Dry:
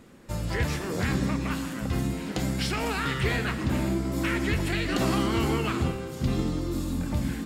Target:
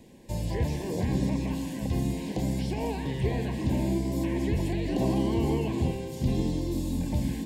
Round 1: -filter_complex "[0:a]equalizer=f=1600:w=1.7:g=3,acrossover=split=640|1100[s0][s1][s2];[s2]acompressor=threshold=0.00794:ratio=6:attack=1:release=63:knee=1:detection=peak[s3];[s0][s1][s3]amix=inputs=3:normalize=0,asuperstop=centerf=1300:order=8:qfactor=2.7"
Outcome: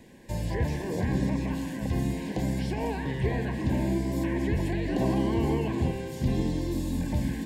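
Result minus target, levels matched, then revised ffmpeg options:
2 kHz band +4.0 dB
-filter_complex "[0:a]equalizer=f=1600:w=1.7:g=-7,acrossover=split=640|1100[s0][s1][s2];[s2]acompressor=threshold=0.00794:ratio=6:attack=1:release=63:knee=1:detection=peak[s3];[s0][s1][s3]amix=inputs=3:normalize=0,asuperstop=centerf=1300:order=8:qfactor=2.7"

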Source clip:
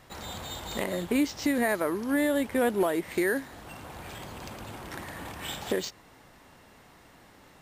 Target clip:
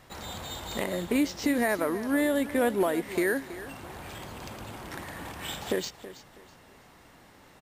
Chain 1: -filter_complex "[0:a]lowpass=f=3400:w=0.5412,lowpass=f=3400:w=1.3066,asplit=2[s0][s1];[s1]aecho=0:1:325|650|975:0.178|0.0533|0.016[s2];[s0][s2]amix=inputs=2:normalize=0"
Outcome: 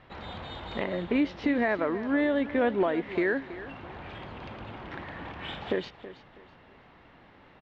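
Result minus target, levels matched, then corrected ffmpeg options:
4 kHz band -4.0 dB
-filter_complex "[0:a]asplit=2[s0][s1];[s1]aecho=0:1:325|650|975:0.178|0.0533|0.016[s2];[s0][s2]amix=inputs=2:normalize=0"

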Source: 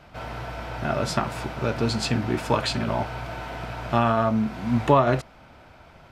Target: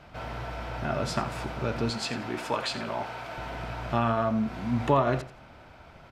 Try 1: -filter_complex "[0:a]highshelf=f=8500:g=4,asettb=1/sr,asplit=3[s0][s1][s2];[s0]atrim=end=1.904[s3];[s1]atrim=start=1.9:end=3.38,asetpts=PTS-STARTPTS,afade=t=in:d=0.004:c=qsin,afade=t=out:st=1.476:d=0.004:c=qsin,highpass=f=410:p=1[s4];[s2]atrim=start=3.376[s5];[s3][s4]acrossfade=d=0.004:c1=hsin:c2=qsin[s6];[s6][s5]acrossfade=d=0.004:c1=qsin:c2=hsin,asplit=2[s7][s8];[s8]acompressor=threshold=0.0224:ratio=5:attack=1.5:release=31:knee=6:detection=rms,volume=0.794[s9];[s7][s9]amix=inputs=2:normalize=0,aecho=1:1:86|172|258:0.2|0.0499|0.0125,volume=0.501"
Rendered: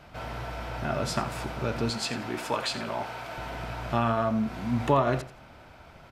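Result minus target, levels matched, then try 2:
8 kHz band +3.0 dB
-filter_complex "[0:a]highshelf=f=8500:g=-4.5,asettb=1/sr,asplit=3[s0][s1][s2];[s0]atrim=end=1.904[s3];[s1]atrim=start=1.9:end=3.38,asetpts=PTS-STARTPTS,afade=t=in:d=0.004:c=qsin,afade=t=out:st=1.476:d=0.004:c=qsin,highpass=f=410:p=1[s4];[s2]atrim=start=3.376[s5];[s3][s4]acrossfade=d=0.004:c1=hsin:c2=qsin[s6];[s6][s5]acrossfade=d=0.004:c1=qsin:c2=hsin,asplit=2[s7][s8];[s8]acompressor=threshold=0.0224:ratio=5:attack=1.5:release=31:knee=6:detection=rms,volume=0.794[s9];[s7][s9]amix=inputs=2:normalize=0,aecho=1:1:86|172|258:0.2|0.0499|0.0125,volume=0.501"

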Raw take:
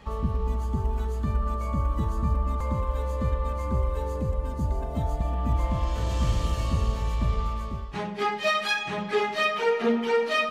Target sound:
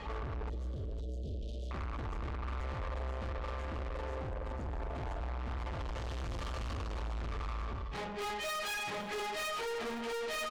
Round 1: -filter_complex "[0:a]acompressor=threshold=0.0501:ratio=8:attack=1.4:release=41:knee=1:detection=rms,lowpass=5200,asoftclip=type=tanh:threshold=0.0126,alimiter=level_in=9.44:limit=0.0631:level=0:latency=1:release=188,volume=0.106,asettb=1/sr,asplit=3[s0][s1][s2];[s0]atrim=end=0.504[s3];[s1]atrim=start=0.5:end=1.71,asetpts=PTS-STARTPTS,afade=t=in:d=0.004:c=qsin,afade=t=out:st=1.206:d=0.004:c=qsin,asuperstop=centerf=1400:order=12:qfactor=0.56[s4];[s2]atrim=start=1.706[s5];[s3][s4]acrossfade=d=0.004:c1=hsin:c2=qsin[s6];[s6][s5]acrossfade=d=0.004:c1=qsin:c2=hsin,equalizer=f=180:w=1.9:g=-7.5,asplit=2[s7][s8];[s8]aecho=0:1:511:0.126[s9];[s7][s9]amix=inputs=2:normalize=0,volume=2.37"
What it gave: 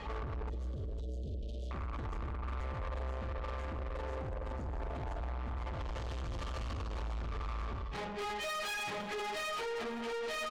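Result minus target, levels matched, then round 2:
compression: peak gain reduction +9.5 dB
-filter_complex "[0:a]lowpass=5200,asoftclip=type=tanh:threshold=0.0126,alimiter=level_in=9.44:limit=0.0631:level=0:latency=1:release=188,volume=0.106,asettb=1/sr,asplit=3[s0][s1][s2];[s0]atrim=end=0.504[s3];[s1]atrim=start=0.5:end=1.71,asetpts=PTS-STARTPTS,afade=t=in:d=0.004:c=qsin,afade=t=out:st=1.206:d=0.004:c=qsin,asuperstop=centerf=1400:order=12:qfactor=0.56[s4];[s2]atrim=start=1.706[s5];[s3][s4]acrossfade=d=0.004:c1=hsin:c2=qsin[s6];[s6][s5]acrossfade=d=0.004:c1=qsin:c2=hsin,equalizer=f=180:w=1.9:g=-7.5,asplit=2[s7][s8];[s8]aecho=0:1:511:0.126[s9];[s7][s9]amix=inputs=2:normalize=0,volume=2.37"

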